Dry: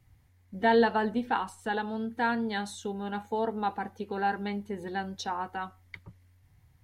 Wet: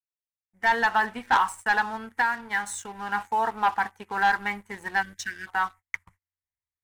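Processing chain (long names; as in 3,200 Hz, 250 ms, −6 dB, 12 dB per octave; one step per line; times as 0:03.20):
fade in at the beginning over 1.35 s
0:02.21–0:03.09: downward compressor, threshold −32 dBFS, peak gain reduction 9 dB
0:05.02–0:05.47: time-frequency box erased 380–1,500 Hz
noise gate −50 dBFS, range −30 dB
octave-band graphic EQ 125/250/500/1,000/2,000/4,000/8,000 Hz −8/−7/−11/+10/+12/−12/+11 dB
leveller curve on the samples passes 2
level −3.5 dB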